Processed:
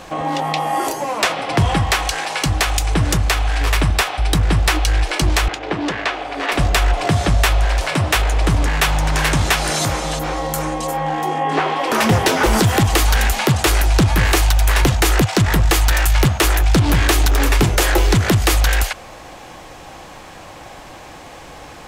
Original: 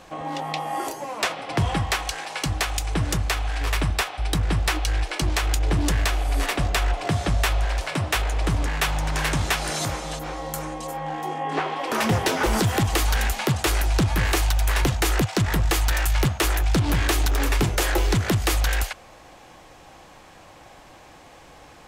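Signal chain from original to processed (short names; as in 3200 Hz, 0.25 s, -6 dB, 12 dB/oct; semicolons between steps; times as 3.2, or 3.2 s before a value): in parallel at +0.5 dB: limiter -24 dBFS, peak gain reduction 9 dB; on the sum: bit-crush 12-bit; 5.48–6.52 BPF 260–3300 Hz; gain +4 dB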